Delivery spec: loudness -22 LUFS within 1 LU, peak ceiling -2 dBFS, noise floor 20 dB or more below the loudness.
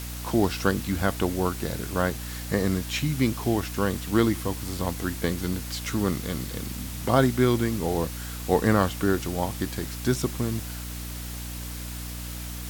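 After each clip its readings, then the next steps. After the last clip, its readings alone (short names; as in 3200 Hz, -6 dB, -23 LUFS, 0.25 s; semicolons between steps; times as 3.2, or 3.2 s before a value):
hum 60 Hz; harmonics up to 300 Hz; hum level -34 dBFS; noise floor -35 dBFS; noise floor target -47 dBFS; loudness -27.0 LUFS; peak -5.5 dBFS; loudness target -22.0 LUFS
-> de-hum 60 Hz, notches 5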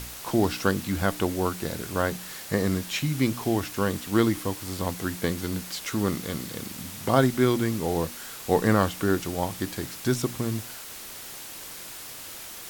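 hum none; noise floor -41 dBFS; noise floor target -48 dBFS
-> denoiser 7 dB, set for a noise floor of -41 dBFS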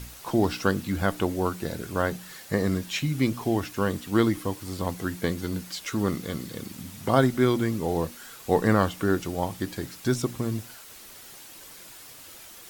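noise floor -46 dBFS; noise floor target -47 dBFS
-> denoiser 6 dB, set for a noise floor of -46 dBFS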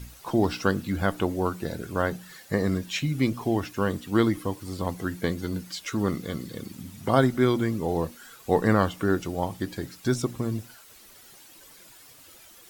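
noise floor -51 dBFS; loudness -27.0 LUFS; peak -5.5 dBFS; loudness target -22.0 LUFS
-> gain +5 dB; limiter -2 dBFS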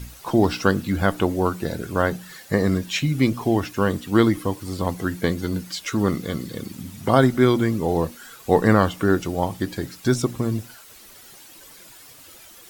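loudness -22.5 LUFS; peak -2.0 dBFS; noise floor -46 dBFS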